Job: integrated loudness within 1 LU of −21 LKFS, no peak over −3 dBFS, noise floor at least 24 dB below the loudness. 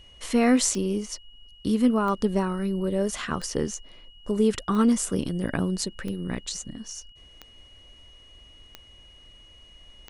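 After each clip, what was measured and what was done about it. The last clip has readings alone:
number of clicks 8; interfering tone 2,900 Hz; level of the tone −51 dBFS; integrated loudness −26.0 LKFS; sample peak −9.0 dBFS; target loudness −21.0 LKFS
→ click removal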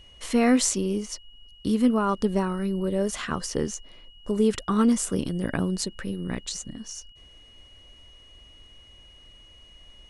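number of clicks 0; interfering tone 2,900 Hz; level of the tone −51 dBFS
→ notch filter 2,900 Hz, Q 30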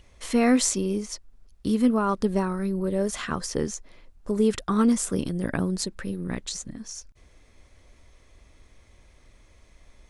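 interfering tone none found; integrated loudness −26.0 LKFS; sample peak −9.0 dBFS; target loudness −21.0 LKFS
→ level +5 dB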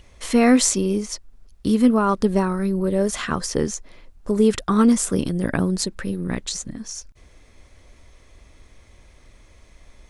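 integrated loudness −21.0 LKFS; sample peak −4.0 dBFS; background noise floor −52 dBFS

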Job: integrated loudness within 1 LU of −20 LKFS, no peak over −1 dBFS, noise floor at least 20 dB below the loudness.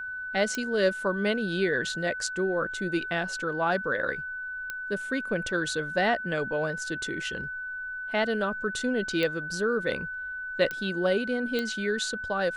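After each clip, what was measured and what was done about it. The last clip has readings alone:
number of clicks 5; interfering tone 1,500 Hz; level of the tone −33 dBFS; integrated loudness −28.5 LKFS; sample peak −11.5 dBFS; target loudness −20.0 LKFS
→ click removal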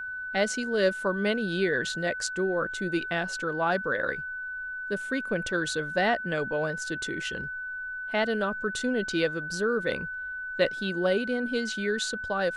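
number of clicks 0; interfering tone 1,500 Hz; level of the tone −33 dBFS
→ notch filter 1,500 Hz, Q 30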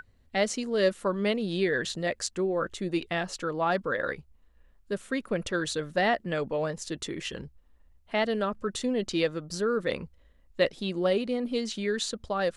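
interfering tone none found; integrated loudness −29.5 LKFS; sample peak −12.0 dBFS; target loudness −20.0 LKFS
→ level +9.5 dB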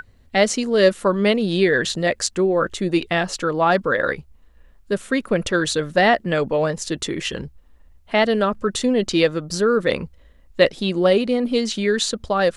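integrated loudness −20.0 LKFS; sample peak −2.5 dBFS; background noise floor −52 dBFS

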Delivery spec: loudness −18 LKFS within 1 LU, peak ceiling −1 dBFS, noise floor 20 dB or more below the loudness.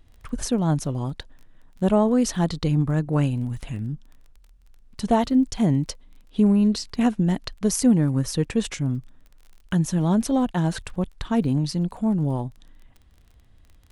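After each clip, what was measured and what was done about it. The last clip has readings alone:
crackle rate 21 per second; integrated loudness −23.5 LKFS; sample peak −7.5 dBFS; target loudness −18.0 LKFS
→ click removal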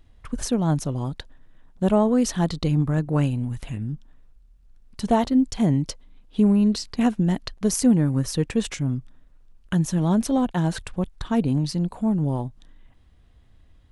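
crackle rate 0 per second; integrated loudness −23.5 LKFS; sample peak −7.5 dBFS; target loudness −18.0 LKFS
→ level +5.5 dB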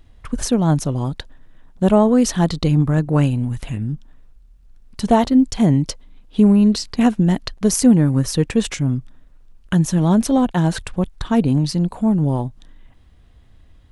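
integrated loudness −18.0 LKFS; sample peak −2.0 dBFS; background noise floor −49 dBFS

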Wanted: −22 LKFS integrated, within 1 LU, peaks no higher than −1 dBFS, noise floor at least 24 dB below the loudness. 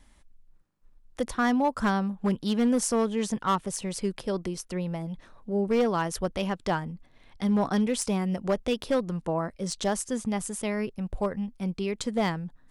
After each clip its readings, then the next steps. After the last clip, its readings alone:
share of clipped samples 0.8%; peaks flattened at −18.5 dBFS; integrated loudness −28.5 LKFS; sample peak −18.5 dBFS; target loudness −22.0 LKFS
→ clipped peaks rebuilt −18.5 dBFS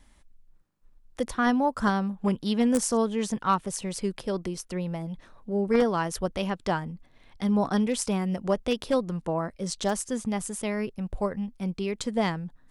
share of clipped samples 0.0%; integrated loudness −28.0 LKFS; sample peak −9.5 dBFS; target loudness −22.0 LKFS
→ level +6 dB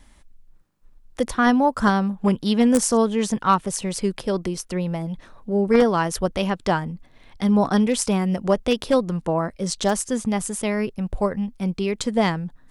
integrated loudness −22.0 LKFS; sample peak −3.5 dBFS; background noise floor −52 dBFS

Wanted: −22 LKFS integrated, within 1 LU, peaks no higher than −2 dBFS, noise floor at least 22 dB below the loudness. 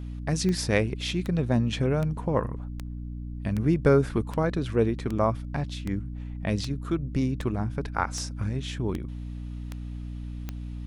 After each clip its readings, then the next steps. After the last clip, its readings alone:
number of clicks 14; mains hum 60 Hz; hum harmonics up to 300 Hz; level of the hum −33 dBFS; integrated loudness −28.5 LKFS; sample peak −6.5 dBFS; target loudness −22.0 LKFS
→ click removal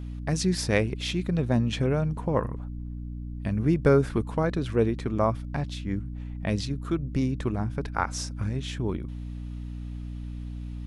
number of clicks 0; mains hum 60 Hz; hum harmonics up to 300 Hz; level of the hum −33 dBFS
→ mains-hum notches 60/120/180/240/300 Hz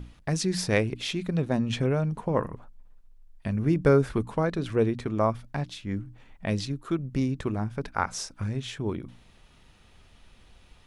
mains hum none found; integrated loudness −28.5 LKFS; sample peak −7.5 dBFS; target loudness −22.0 LKFS
→ level +6.5 dB
brickwall limiter −2 dBFS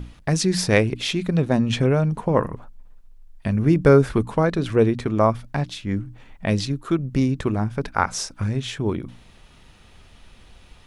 integrated loudness −22.0 LKFS; sample peak −2.0 dBFS; background noise floor −50 dBFS

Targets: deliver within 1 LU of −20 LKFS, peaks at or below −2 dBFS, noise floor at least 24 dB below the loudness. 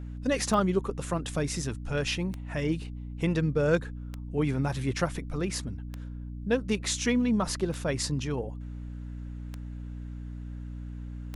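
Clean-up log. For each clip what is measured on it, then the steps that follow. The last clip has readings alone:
number of clicks 7; mains hum 60 Hz; hum harmonics up to 300 Hz; level of the hum −36 dBFS; integrated loudness −31.0 LKFS; sample peak −12.0 dBFS; target loudness −20.0 LKFS
→ click removal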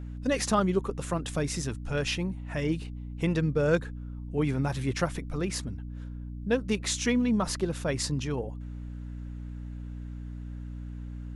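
number of clicks 0; mains hum 60 Hz; hum harmonics up to 300 Hz; level of the hum −36 dBFS
→ hum removal 60 Hz, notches 5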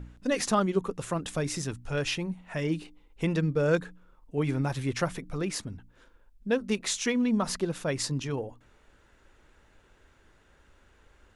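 mains hum none found; integrated loudness −30.0 LKFS; sample peak −12.5 dBFS; target loudness −20.0 LKFS
→ level +10 dB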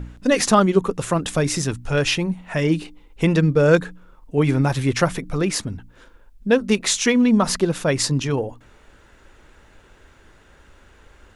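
integrated loudness −20.0 LKFS; sample peak −2.5 dBFS; background noise floor −52 dBFS

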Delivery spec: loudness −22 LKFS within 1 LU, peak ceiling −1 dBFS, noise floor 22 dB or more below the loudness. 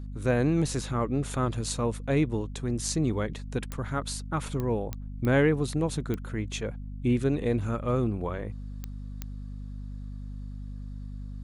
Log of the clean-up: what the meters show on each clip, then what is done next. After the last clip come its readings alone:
number of clicks 7; mains hum 50 Hz; hum harmonics up to 250 Hz; level of the hum −36 dBFS; integrated loudness −29.0 LKFS; sample peak −12.5 dBFS; target loudness −22.0 LKFS
→ click removal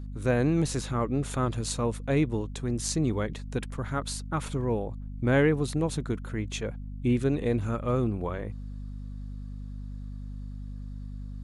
number of clicks 0; mains hum 50 Hz; hum harmonics up to 250 Hz; level of the hum −36 dBFS
→ mains-hum notches 50/100/150/200/250 Hz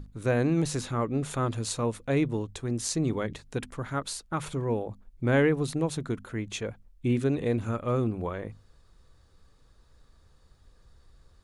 mains hum none found; integrated loudness −29.5 LKFS; sample peak −12.5 dBFS; target loudness −22.0 LKFS
→ level +7.5 dB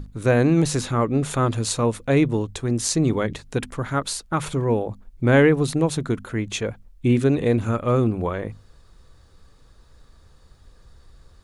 integrated loudness −22.0 LKFS; sample peak −5.0 dBFS; background noise floor −52 dBFS

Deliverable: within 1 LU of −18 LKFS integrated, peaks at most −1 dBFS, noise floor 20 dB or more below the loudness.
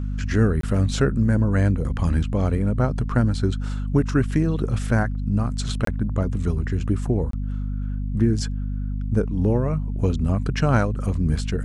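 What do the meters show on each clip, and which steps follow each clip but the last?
number of dropouts 3; longest dropout 23 ms; mains hum 50 Hz; hum harmonics up to 250 Hz; level of the hum −23 dBFS; integrated loudness −23.0 LKFS; sample peak −4.5 dBFS; target loudness −18.0 LKFS
→ repair the gap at 0:00.61/0:05.85/0:07.31, 23 ms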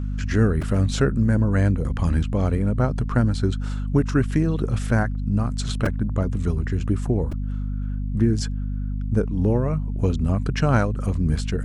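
number of dropouts 0; mains hum 50 Hz; hum harmonics up to 250 Hz; level of the hum −23 dBFS
→ hum removal 50 Hz, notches 5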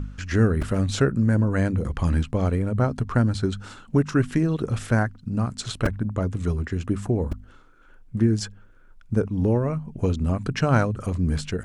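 mains hum none found; integrated loudness −24.5 LKFS; sample peak −6.0 dBFS; target loudness −18.0 LKFS
→ level +6.5 dB
brickwall limiter −1 dBFS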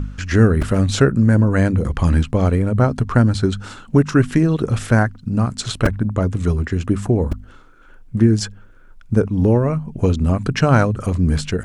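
integrated loudness −18.0 LKFS; sample peak −1.0 dBFS; background noise floor −43 dBFS

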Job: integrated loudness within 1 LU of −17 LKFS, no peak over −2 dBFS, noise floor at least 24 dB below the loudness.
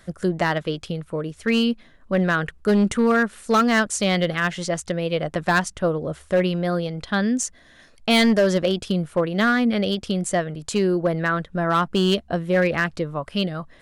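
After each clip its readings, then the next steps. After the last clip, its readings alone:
share of clipped samples 0.9%; peaks flattened at −12.5 dBFS; integrated loudness −22.0 LKFS; sample peak −12.5 dBFS; target loudness −17.0 LKFS
→ clipped peaks rebuilt −12.5 dBFS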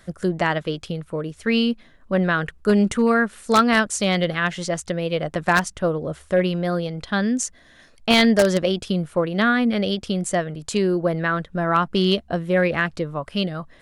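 share of clipped samples 0.0%; integrated loudness −21.5 LKFS; sample peak −3.5 dBFS; target loudness −17.0 LKFS
→ level +4.5 dB
brickwall limiter −2 dBFS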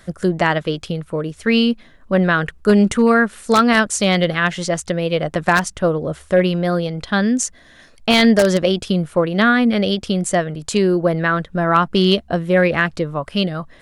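integrated loudness −17.5 LKFS; sample peak −2.0 dBFS; background noise floor −48 dBFS

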